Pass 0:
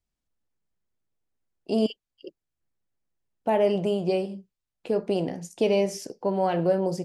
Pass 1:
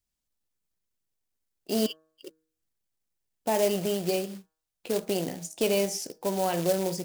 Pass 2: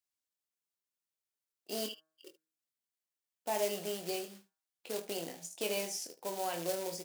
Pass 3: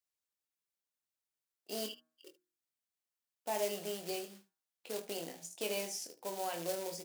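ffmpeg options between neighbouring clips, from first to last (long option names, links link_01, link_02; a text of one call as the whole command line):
ffmpeg -i in.wav -af "acrusher=bits=4:mode=log:mix=0:aa=0.000001,highshelf=frequency=3300:gain=10,bandreject=frequency=158.4:width_type=h:width=4,bandreject=frequency=316.8:width_type=h:width=4,bandreject=frequency=475.2:width_type=h:width=4,bandreject=frequency=633.6:width_type=h:width=4,bandreject=frequency=792:width_type=h:width=4,bandreject=frequency=950.4:width_type=h:width=4,bandreject=frequency=1108.8:width_type=h:width=4,bandreject=frequency=1267.2:width_type=h:width=4,bandreject=frequency=1425.6:width_type=h:width=4,bandreject=frequency=1584:width_type=h:width=4,bandreject=frequency=1742.4:width_type=h:width=4,volume=-3.5dB" out.wav
ffmpeg -i in.wav -filter_complex "[0:a]highpass=frequency=620:poles=1,asplit=2[link_01][link_02];[link_02]aecho=0:1:24|75:0.447|0.158[link_03];[link_01][link_03]amix=inputs=2:normalize=0,volume=-6.5dB" out.wav
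ffmpeg -i in.wav -af "bandreject=frequency=60:width_type=h:width=6,bandreject=frequency=120:width_type=h:width=6,bandreject=frequency=180:width_type=h:width=6,bandreject=frequency=240:width_type=h:width=6,bandreject=frequency=300:width_type=h:width=6,bandreject=frequency=360:width_type=h:width=6,volume=-2dB" out.wav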